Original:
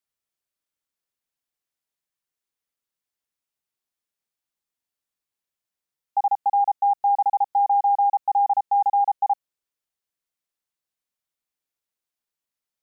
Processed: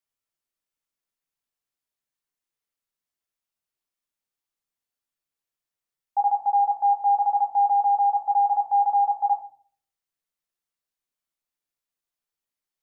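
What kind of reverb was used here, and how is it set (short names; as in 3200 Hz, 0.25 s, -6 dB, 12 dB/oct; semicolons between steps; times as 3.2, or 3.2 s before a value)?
shoebox room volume 53 m³, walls mixed, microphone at 0.38 m; gain -3 dB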